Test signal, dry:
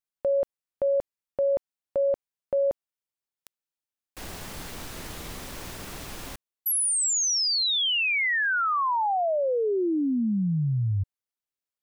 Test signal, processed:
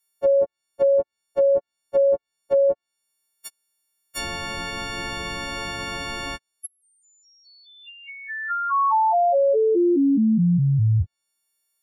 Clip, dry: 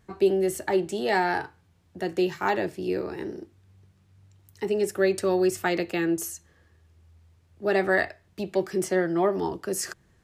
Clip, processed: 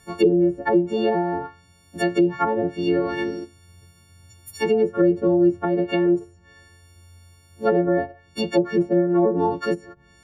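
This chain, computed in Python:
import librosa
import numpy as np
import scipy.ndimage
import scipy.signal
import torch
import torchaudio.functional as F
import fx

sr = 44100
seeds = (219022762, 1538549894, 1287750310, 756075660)

y = fx.freq_snap(x, sr, grid_st=4)
y = fx.env_lowpass_down(y, sr, base_hz=480.0, full_db=-19.5)
y = y * 10.0 ** (7.0 / 20.0)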